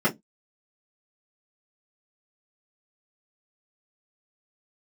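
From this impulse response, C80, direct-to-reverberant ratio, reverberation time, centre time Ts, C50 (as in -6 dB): 34.0 dB, -10.0 dB, no single decay rate, 15 ms, 20.0 dB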